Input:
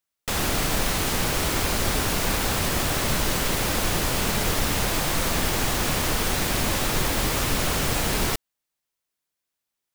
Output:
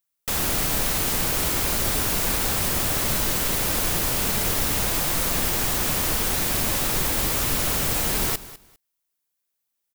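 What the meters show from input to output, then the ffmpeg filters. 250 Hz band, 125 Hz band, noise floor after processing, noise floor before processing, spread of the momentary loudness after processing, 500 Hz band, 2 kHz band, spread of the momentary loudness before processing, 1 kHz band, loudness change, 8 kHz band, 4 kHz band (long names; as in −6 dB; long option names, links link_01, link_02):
−2.5 dB, −2.5 dB, −79 dBFS, −84 dBFS, 0 LU, −2.5 dB, −2.0 dB, 0 LU, −2.5 dB, +2.0 dB, +2.5 dB, −1.0 dB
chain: -af "highshelf=frequency=8800:gain=10.5,aecho=1:1:201|402:0.141|0.0283,volume=-2.5dB"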